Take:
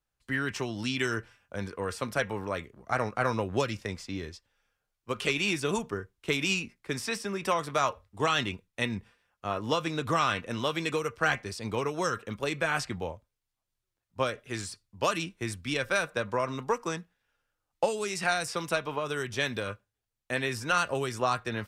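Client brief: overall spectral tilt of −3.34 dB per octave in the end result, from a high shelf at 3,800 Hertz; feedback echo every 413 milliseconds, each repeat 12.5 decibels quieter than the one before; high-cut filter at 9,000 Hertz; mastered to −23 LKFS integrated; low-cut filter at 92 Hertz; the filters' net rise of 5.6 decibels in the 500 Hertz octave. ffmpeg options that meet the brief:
ffmpeg -i in.wav -af "highpass=92,lowpass=9000,equalizer=frequency=500:width_type=o:gain=6.5,highshelf=frequency=3800:gain=8.5,aecho=1:1:413|826|1239:0.237|0.0569|0.0137,volume=4.5dB" out.wav

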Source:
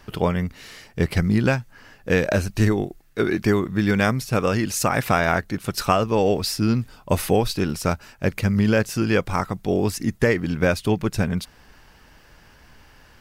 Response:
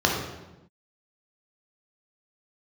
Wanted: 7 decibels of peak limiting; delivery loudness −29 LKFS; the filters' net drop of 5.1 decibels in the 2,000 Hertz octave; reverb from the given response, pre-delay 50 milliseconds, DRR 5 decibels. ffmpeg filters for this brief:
-filter_complex "[0:a]equalizer=frequency=2000:width_type=o:gain=-7,alimiter=limit=-12.5dB:level=0:latency=1,asplit=2[link_01][link_02];[1:a]atrim=start_sample=2205,adelay=50[link_03];[link_02][link_03]afir=irnorm=-1:irlink=0,volume=-21.5dB[link_04];[link_01][link_04]amix=inputs=2:normalize=0,volume=-6.5dB"

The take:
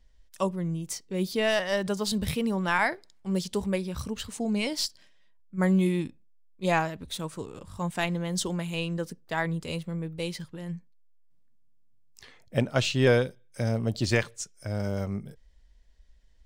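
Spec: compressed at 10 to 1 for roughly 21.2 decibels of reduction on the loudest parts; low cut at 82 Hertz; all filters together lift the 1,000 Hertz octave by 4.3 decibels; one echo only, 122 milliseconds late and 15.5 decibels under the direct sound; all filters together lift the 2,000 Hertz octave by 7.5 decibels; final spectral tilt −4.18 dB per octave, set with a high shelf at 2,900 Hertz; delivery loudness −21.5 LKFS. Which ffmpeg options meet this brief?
ffmpeg -i in.wav -af "highpass=82,equalizer=frequency=1000:width_type=o:gain=3.5,equalizer=frequency=2000:width_type=o:gain=7,highshelf=frequency=2900:gain=3.5,acompressor=threshold=-36dB:ratio=10,aecho=1:1:122:0.168,volume=19dB" out.wav

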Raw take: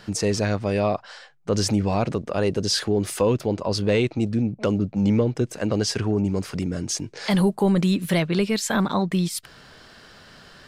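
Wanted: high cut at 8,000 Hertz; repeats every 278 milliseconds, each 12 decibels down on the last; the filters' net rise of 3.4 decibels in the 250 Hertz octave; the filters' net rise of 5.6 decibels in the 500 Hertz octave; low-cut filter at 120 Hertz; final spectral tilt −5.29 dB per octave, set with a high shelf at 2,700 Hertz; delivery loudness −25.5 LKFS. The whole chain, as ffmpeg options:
ffmpeg -i in.wav -af "highpass=120,lowpass=8000,equalizer=frequency=250:width_type=o:gain=4,equalizer=frequency=500:width_type=o:gain=5.5,highshelf=frequency=2700:gain=4.5,aecho=1:1:278|556|834:0.251|0.0628|0.0157,volume=-6dB" out.wav

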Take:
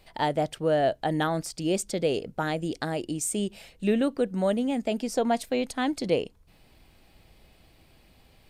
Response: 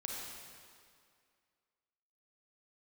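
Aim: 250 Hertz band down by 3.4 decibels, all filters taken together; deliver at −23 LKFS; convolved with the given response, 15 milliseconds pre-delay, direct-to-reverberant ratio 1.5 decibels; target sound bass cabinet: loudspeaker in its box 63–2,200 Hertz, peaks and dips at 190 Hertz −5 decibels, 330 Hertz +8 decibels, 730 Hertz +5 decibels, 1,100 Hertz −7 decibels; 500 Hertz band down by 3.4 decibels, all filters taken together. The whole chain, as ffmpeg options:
-filter_complex "[0:a]equalizer=frequency=250:width_type=o:gain=-6,equalizer=frequency=500:width_type=o:gain=-5.5,asplit=2[link_01][link_02];[1:a]atrim=start_sample=2205,adelay=15[link_03];[link_02][link_03]afir=irnorm=-1:irlink=0,volume=-2dB[link_04];[link_01][link_04]amix=inputs=2:normalize=0,highpass=frequency=63:width=0.5412,highpass=frequency=63:width=1.3066,equalizer=frequency=190:width_type=q:width=4:gain=-5,equalizer=frequency=330:width_type=q:width=4:gain=8,equalizer=frequency=730:width_type=q:width=4:gain=5,equalizer=frequency=1100:width_type=q:width=4:gain=-7,lowpass=frequency=2200:width=0.5412,lowpass=frequency=2200:width=1.3066,volume=6dB"

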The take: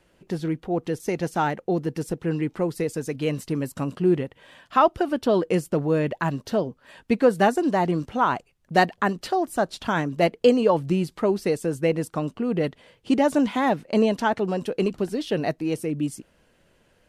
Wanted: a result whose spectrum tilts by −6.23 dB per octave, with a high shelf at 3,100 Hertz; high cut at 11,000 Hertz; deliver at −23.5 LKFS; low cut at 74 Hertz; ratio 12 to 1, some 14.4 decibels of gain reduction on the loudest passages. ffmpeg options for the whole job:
ffmpeg -i in.wav -af "highpass=74,lowpass=11000,highshelf=frequency=3100:gain=-6.5,acompressor=threshold=-27dB:ratio=12,volume=9.5dB" out.wav

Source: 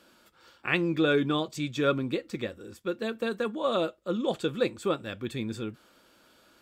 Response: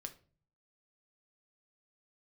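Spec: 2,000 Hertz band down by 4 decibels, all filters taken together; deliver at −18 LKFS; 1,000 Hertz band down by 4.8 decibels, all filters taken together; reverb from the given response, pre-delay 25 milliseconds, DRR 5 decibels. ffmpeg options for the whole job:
-filter_complex "[0:a]equalizer=frequency=1000:width_type=o:gain=-5.5,equalizer=frequency=2000:width_type=o:gain=-3.5,asplit=2[link_01][link_02];[1:a]atrim=start_sample=2205,adelay=25[link_03];[link_02][link_03]afir=irnorm=-1:irlink=0,volume=-1dB[link_04];[link_01][link_04]amix=inputs=2:normalize=0,volume=11.5dB"

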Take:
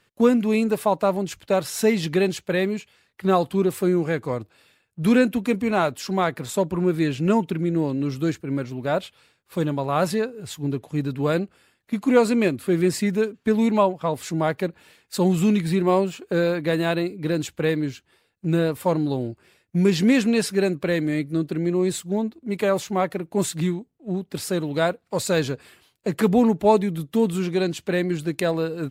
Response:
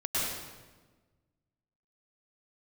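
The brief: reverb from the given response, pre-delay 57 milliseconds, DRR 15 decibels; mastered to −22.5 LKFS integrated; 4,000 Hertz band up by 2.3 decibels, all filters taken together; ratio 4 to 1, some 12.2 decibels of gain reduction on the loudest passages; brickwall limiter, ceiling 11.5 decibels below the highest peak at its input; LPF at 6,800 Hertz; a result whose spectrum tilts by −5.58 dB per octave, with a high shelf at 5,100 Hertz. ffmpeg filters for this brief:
-filter_complex "[0:a]lowpass=6800,equalizer=frequency=4000:width_type=o:gain=6,highshelf=frequency=5100:gain=-7,acompressor=threshold=-27dB:ratio=4,alimiter=limit=-23.5dB:level=0:latency=1,asplit=2[link_01][link_02];[1:a]atrim=start_sample=2205,adelay=57[link_03];[link_02][link_03]afir=irnorm=-1:irlink=0,volume=-23.5dB[link_04];[link_01][link_04]amix=inputs=2:normalize=0,volume=10.5dB"

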